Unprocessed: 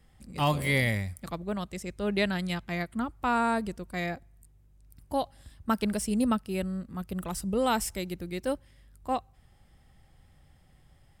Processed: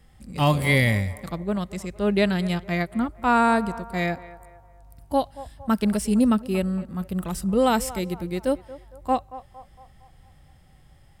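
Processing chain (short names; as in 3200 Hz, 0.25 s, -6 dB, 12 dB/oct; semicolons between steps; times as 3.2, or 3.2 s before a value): harmonic-percussive split harmonic +6 dB; narrowing echo 0.229 s, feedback 51%, band-pass 810 Hz, level -15 dB; gain +1.5 dB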